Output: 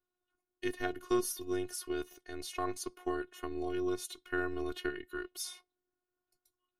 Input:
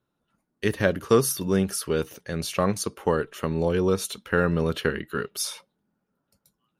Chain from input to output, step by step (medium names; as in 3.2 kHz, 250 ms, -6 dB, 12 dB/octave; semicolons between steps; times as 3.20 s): robot voice 361 Hz; trim -9 dB